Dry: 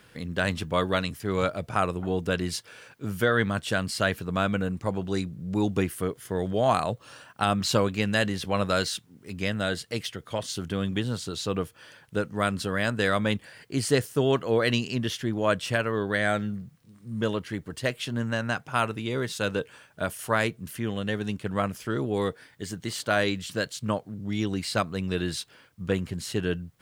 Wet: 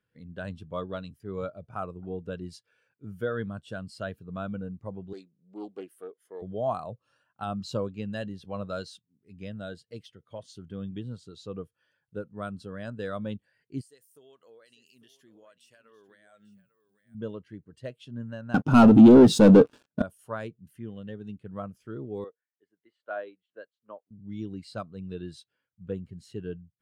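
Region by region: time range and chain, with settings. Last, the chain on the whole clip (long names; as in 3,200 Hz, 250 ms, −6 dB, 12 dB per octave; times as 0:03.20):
0:05.13–0:06.42: high-pass filter 370 Hz + highs frequency-modulated by the lows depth 0.18 ms
0:13.81–0:17.15: RIAA equalisation recording + downward compressor, threshold −37 dBFS + single-tap delay 847 ms −10.5 dB
0:18.54–0:20.02: parametric band 260 Hz +13 dB 1.3 octaves + leveller curve on the samples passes 5
0:22.24–0:24.11: three-way crossover with the lows and the highs turned down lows −20 dB, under 300 Hz, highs −16 dB, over 3,100 Hz + expander for the loud parts, over −46 dBFS
whole clip: dynamic equaliser 2,000 Hz, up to −6 dB, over −43 dBFS, Q 2.1; every bin expanded away from the loudest bin 1.5 to 1; level +1 dB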